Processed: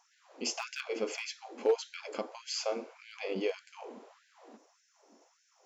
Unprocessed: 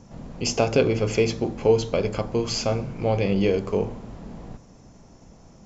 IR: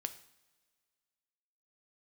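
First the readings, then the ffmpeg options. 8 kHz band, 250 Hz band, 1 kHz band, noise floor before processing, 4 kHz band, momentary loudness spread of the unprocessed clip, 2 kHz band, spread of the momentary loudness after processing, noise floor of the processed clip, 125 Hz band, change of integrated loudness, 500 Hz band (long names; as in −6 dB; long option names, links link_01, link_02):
can't be measured, −18.0 dB, −11.5 dB, −51 dBFS, −8.0 dB, 19 LU, −8.0 dB, 17 LU, −71 dBFS, below −30 dB, −12.5 dB, −12.5 dB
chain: -af "volume=10.5dB,asoftclip=hard,volume=-10.5dB,afftfilt=real='re*gte(b*sr/1024,210*pow(1500/210,0.5+0.5*sin(2*PI*1.7*pts/sr)))':imag='im*gte(b*sr/1024,210*pow(1500/210,0.5+0.5*sin(2*PI*1.7*pts/sr)))':win_size=1024:overlap=0.75,volume=-8dB"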